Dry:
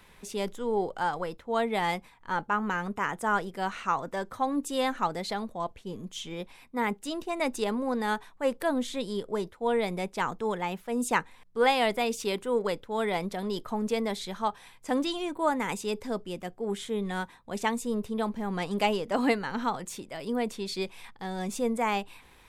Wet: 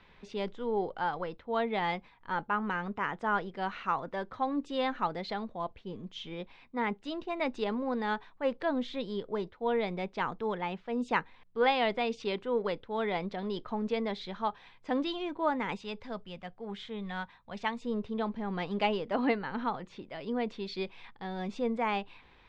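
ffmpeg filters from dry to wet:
-filter_complex "[0:a]asettb=1/sr,asplit=3[a][b][c];[a]atrim=end=15.774[d];[b]atrim=start=15.77:end=17.82,asetpts=PTS-STARTPTS,afade=t=in:d=0.004:c=qsin,afade=t=out:st=2.046:d=0.004:c=qsin,equalizer=f=340:w=1.5:g=-11.5[e];[c]atrim=start=17.816[f];[d][e]acrossfade=d=0.004:c1=hsin:c2=qsin[g];[g][f]acrossfade=d=0.004:c1=qsin:c2=hsin,asettb=1/sr,asplit=3[h][i][j];[h]atrim=end=19.144[k];[i]atrim=start=19.14:end=20.08,asetpts=PTS-STARTPTS,afade=t=in:d=0.004:c=qsin,afade=t=out:st=0.936:d=0.004:c=qsin,lowpass=f=3.4k:p=1[l];[j]atrim=start=20.076[m];[k][l]acrossfade=d=0.004:c1=hsin:c2=qsin[n];[n][m]acrossfade=d=0.004:c1=qsin:c2=hsin,lowpass=f=4.3k:w=0.5412,lowpass=f=4.3k:w=1.3066,volume=-3dB"

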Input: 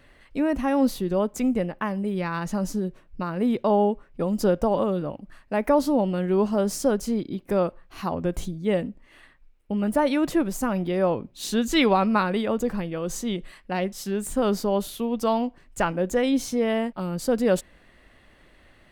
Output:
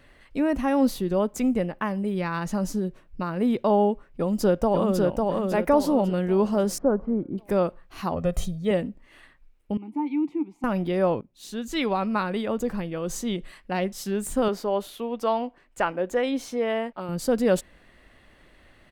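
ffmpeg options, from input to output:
-filter_complex "[0:a]asplit=2[a][b];[b]afade=t=in:st=4.07:d=0.01,afade=t=out:st=5.01:d=0.01,aecho=0:1:550|1100|1650|2200|2750:0.749894|0.299958|0.119983|0.0479932|0.0191973[c];[a][c]amix=inputs=2:normalize=0,asettb=1/sr,asplit=3[d][e][f];[d]atrim=end=6.784[g];[e]atrim=start=6.78:end=7.38,asetpts=PTS-STARTPTS,afade=t=in:d=0.004:c=qsin,afade=t=out:st=0.596:d=0.004:c=qsin,lowpass=f=1.4k:w=0.5412,lowpass=f=1.4k:w=1.3066[h];[f]atrim=start=7.376[i];[g][h]acrossfade=d=0.004:c1=hsin:c2=qsin[j];[j][i]acrossfade=d=0.004:c1=qsin:c2=hsin,asettb=1/sr,asplit=3[k][l][m];[k]atrim=end=8.164[n];[l]atrim=start=8.16:end=8.71,asetpts=PTS-STARTPTS,afade=t=in:d=0.004:c=qsin,afade=t=out:st=0.546:d=0.004:c=qsin,aecho=1:1:1.6:0.79,atrim=end_sample=24255[o];[m]atrim=start=8.706[p];[n][o]acrossfade=d=0.004:c1=hsin:c2=qsin[q];[q][p]acrossfade=d=0.004:c1=qsin:c2=hsin,asettb=1/sr,asplit=3[r][s][t];[r]atrim=end=9.774[u];[s]atrim=start=9.77:end=10.64,asetpts=PTS-STARTPTS,afade=t=in:d=0.004:c=qsin,afade=t=out:st=0.866:d=0.004:c=qsin,asplit=3[v][w][x];[v]bandpass=f=300:t=q:w=8,volume=0dB[y];[w]bandpass=f=870:t=q:w=8,volume=-6dB[z];[x]bandpass=f=2.24k:t=q:w=8,volume=-9dB[aa];[y][z][aa]amix=inputs=3:normalize=0[ab];[t]atrim=start=10.636[ac];[u][ab]acrossfade=d=0.004:c1=hsin:c2=qsin[ad];[ad][ac]acrossfade=d=0.004:c1=qsin:c2=hsin,asettb=1/sr,asplit=3[ae][af][ag];[ae]atrim=end=14.484[ah];[af]atrim=start=14.48:end=17.09,asetpts=PTS-STARTPTS,afade=t=in:d=0.004:c=qsin,afade=t=out:st=2.606:d=0.004:c=qsin,bass=f=250:g=-12,treble=f=4k:g=-8[ai];[ag]atrim=start=17.086[aj];[ah][ai]acrossfade=d=0.004:c1=hsin:c2=qsin[ak];[ak][aj]acrossfade=d=0.004:c1=qsin:c2=hsin,asplit=2[al][am];[al]atrim=end=11.21,asetpts=PTS-STARTPTS,afade=t=out:st=11.206:d=0.004:c=hsin:silence=0.177828[an];[am]atrim=start=11.21,asetpts=PTS-STARTPTS,afade=t=in:d=2.52:c=qsin:silence=0.177828[ao];[an][ao]concat=n=2:v=0:a=1"

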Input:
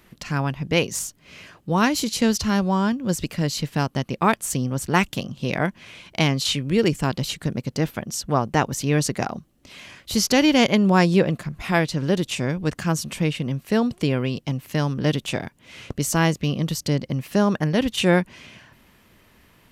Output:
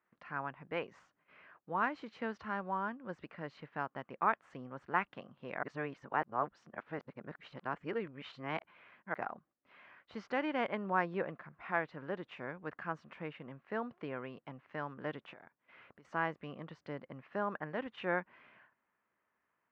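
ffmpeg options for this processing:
-filter_complex "[0:a]asettb=1/sr,asplit=3[a][b][c];[a]atrim=end=15.334[d];[b]atrim=start=15.33:end=16.05,asetpts=PTS-STARTPTS,afade=t=in:d=0.004:c=qsin,afade=t=out:st=0.716:d=0.004:c=qsin,acompressor=threshold=-34dB:ratio=8:attack=3.2:release=140:knee=1:detection=peak[e];[c]atrim=start=16.046[f];[d][e]acrossfade=d=0.004:c1=hsin:c2=qsin[g];[g][f]acrossfade=d=0.004:c1=qsin:c2=hsin,asplit=3[h][i][j];[h]atrim=end=5.632[k];[i]atrim=start=5.628:end=9.142,asetpts=PTS-STARTPTS,areverse[l];[j]atrim=start=9.138[m];[k][l]acrossfade=d=0.004:c1=hsin:c2=hsin[n];[n][m]acrossfade=d=0.004:c1=hsin:c2=hsin,agate=range=-11dB:threshold=-48dB:ratio=16:detection=peak,lowpass=f=1.5k:w=0.5412,lowpass=f=1.5k:w=1.3066,aderivative,volume=7dB"

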